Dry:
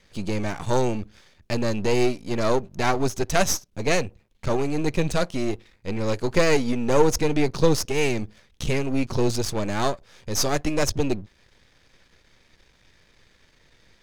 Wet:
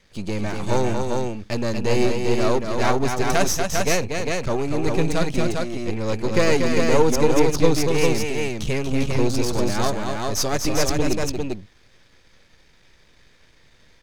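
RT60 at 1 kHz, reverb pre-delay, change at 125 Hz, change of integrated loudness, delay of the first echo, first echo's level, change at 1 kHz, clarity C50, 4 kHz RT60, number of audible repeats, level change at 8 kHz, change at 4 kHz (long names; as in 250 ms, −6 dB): no reverb audible, no reverb audible, +2.5 dB, +2.0 dB, 237 ms, −5.5 dB, +2.5 dB, no reverb audible, no reverb audible, 2, +2.5 dB, +2.5 dB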